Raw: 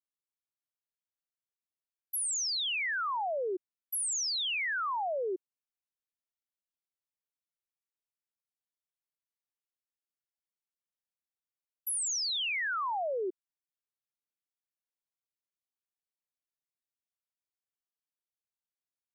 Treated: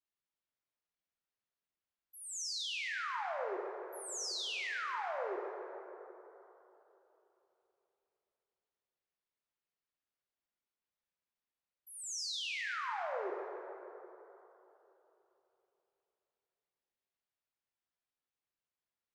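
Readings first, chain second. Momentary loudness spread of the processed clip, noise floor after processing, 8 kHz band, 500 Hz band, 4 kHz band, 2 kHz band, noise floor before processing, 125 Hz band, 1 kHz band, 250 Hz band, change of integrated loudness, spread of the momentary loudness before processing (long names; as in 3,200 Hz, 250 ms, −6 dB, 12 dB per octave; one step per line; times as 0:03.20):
16 LU, below −85 dBFS, −10.0 dB, −5.0 dB, −7.0 dB, −6.0 dB, below −85 dBFS, can't be measured, −5.5 dB, −5.0 dB, −7.5 dB, 8 LU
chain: low-pass filter 4,100 Hz 12 dB per octave
brickwall limiter −38.5 dBFS, peak gain reduction 9 dB
dense smooth reverb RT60 3.4 s, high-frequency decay 0.45×, DRR −0.5 dB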